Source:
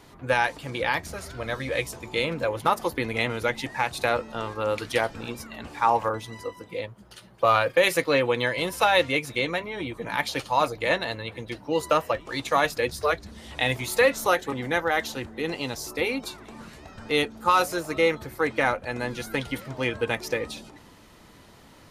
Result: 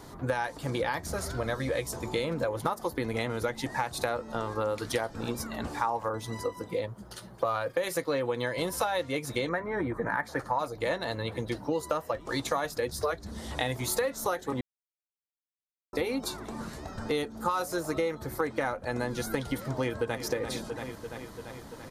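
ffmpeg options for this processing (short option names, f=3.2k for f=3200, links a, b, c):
-filter_complex "[0:a]asettb=1/sr,asplit=3[a][b][c];[a]atrim=end=9.494[d];[b]atrim=start=9.49:end=10.59,asetpts=PTS-STARTPTS,afade=t=in:d=0.004:c=qsin,afade=t=out:st=1.096:d=0.004:c=qsin,highshelf=f=2.3k:t=q:w=3:g=-9.5[e];[c]atrim=start=10.586[f];[d][e]acrossfade=d=0.004:c1=hsin:c2=qsin[g];[g][f]acrossfade=d=0.004:c1=qsin:c2=hsin,asplit=2[h][i];[i]afade=t=in:st=19.51:d=0.01,afade=t=out:st=20.16:d=0.01,aecho=0:1:340|680|1020|1360|1700|2040|2380|2720|3060:0.237137|0.165996|0.116197|0.0813381|0.0569367|0.0398557|0.027899|0.0195293|0.0136705[j];[h][j]amix=inputs=2:normalize=0,asplit=3[k][l][m];[k]atrim=end=14.61,asetpts=PTS-STARTPTS,afade=t=out:st=14.606:d=0.004:c=hsin[n];[l]atrim=start=14.61:end=15.93,asetpts=PTS-STARTPTS,volume=0[o];[m]atrim=start=15.93,asetpts=PTS-STARTPTS,afade=t=in:d=0.004:c=hsin[p];[n][o][p]concat=n=3:v=0:a=1,equalizer=f=2.6k:w=1.6:g=-10,acompressor=threshold=-32dB:ratio=6,volume=5dB"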